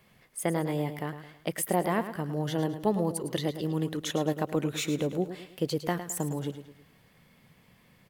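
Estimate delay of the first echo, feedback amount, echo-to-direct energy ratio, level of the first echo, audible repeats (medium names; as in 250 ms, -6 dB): 107 ms, 41%, -10.0 dB, -11.0 dB, 4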